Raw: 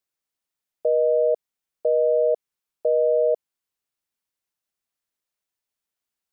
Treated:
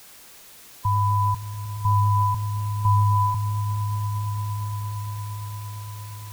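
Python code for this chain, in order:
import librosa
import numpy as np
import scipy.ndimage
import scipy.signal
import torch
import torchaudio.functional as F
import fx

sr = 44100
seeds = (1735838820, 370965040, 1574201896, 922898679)

p1 = fx.band_swap(x, sr, width_hz=500)
p2 = fx.peak_eq(p1, sr, hz=410.0, db=-14.0, octaves=1.1)
p3 = fx.dmg_noise_colour(p2, sr, seeds[0], colour='white', level_db=-47.0)
y = p3 + fx.echo_swell(p3, sr, ms=115, loudest=8, wet_db=-15.5, dry=0)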